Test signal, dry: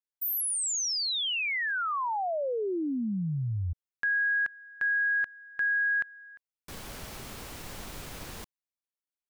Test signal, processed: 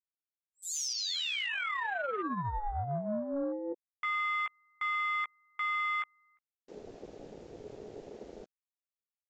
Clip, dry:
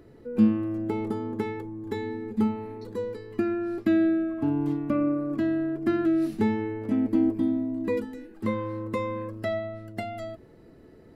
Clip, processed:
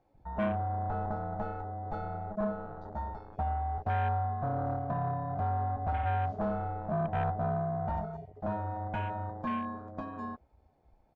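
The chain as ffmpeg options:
-filter_complex "[0:a]asplit=2[a][b];[b]adelay=15,volume=-7dB[c];[a][c]amix=inputs=2:normalize=0,aeval=exprs='val(0)*sin(2*PI*420*n/s)':c=same,aresample=16000,asoftclip=type=tanh:threshold=-26.5dB,aresample=44100,afwtdn=0.0112"

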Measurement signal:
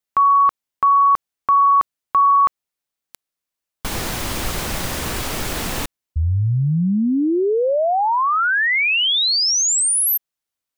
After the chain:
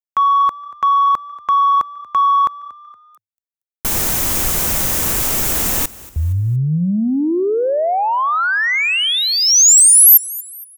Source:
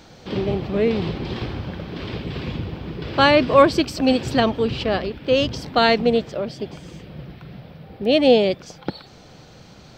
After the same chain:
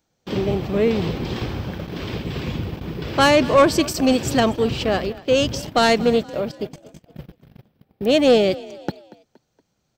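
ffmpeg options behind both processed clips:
-filter_complex "[0:a]agate=range=-28dB:threshold=-38dB:ratio=16:release=28:detection=peak,acontrast=51,aexciter=amount=3.8:drive=2.6:freq=6k,asplit=2[a][b];[b]asplit=3[c][d][e];[c]adelay=234,afreqshift=33,volume=-20dB[f];[d]adelay=468,afreqshift=66,volume=-27.5dB[g];[e]adelay=702,afreqshift=99,volume=-35.1dB[h];[f][g][h]amix=inputs=3:normalize=0[i];[a][i]amix=inputs=2:normalize=0,volume=-4.5dB"

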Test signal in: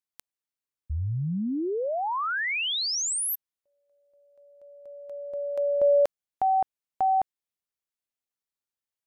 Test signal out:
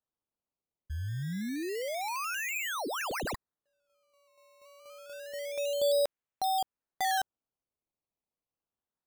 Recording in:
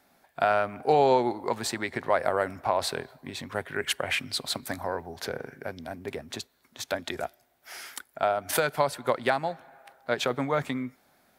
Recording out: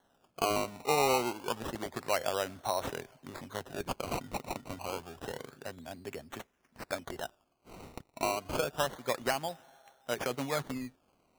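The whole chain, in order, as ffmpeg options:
-af "acrusher=samples=18:mix=1:aa=0.000001:lfo=1:lforange=18:lforate=0.28,volume=-6.5dB"

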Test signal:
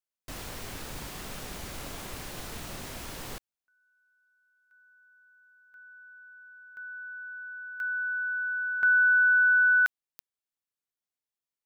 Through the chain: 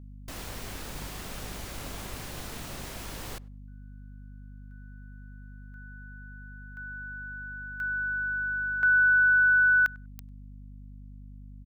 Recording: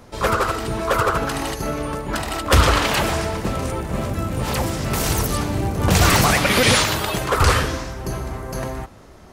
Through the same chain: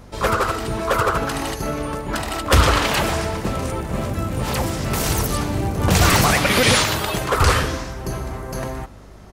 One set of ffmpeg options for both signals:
-filter_complex "[0:a]asplit=2[a][b];[b]adelay=98,lowpass=f=1.8k:p=1,volume=-23dB,asplit=2[c][d];[d]adelay=98,lowpass=f=1.8k:p=1,volume=0.17[e];[a][c][e]amix=inputs=3:normalize=0,aeval=exprs='val(0)+0.00631*(sin(2*PI*50*n/s)+sin(2*PI*2*50*n/s)/2+sin(2*PI*3*50*n/s)/3+sin(2*PI*4*50*n/s)/4+sin(2*PI*5*50*n/s)/5)':c=same"

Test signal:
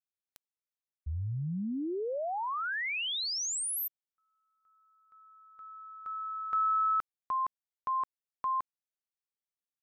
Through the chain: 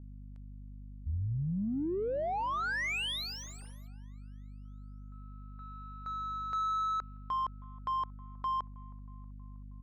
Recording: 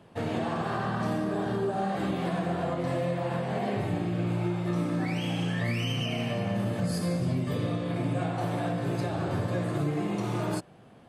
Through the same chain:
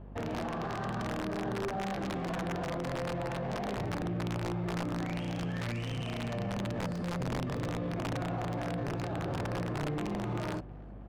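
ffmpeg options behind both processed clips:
-filter_complex "[0:a]aeval=exprs='(mod(11.9*val(0)+1,2)-1)/11.9':c=same,aeval=exprs='val(0)+0.00447*(sin(2*PI*50*n/s)+sin(2*PI*2*50*n/s)/2+sin(2*PI*3*50*n/s)/3+sin(2*PI*4*50*n/s)/4+sin(2*PI*5*50*n/s)/5)':c=same,alimiter=level_in=4.5dB:limit=-24dB:level=0:latency=1:release=22,volume=-4.5dB,asplit=2[a][b];[b]aecho=0:1:318|636|954|1272|1590:0.0841|0.0505|0.0303|0.0182|0.0109[c];[a][c]amix=inputs=2:normalize=0,adynamicsmooth=sensitivity=6:basefreq=1.4k,volume=1dB"

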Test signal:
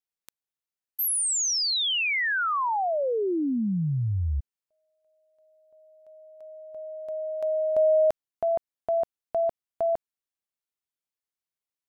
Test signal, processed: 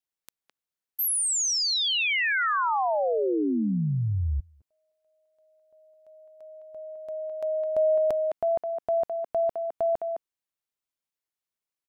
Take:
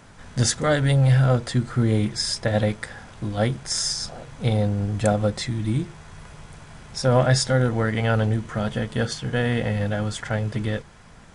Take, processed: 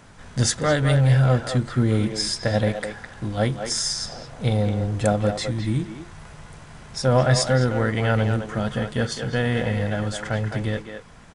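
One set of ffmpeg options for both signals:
-filter_complex "[0:a]asplit=2[a][b];[b]adelay=210,highpass=300,lowpass=3.4k,asoftclip=type=hard:threshold=-15.5dB,volume=-6dB[c];[a][c]amix=inputs=2:normalize=0"

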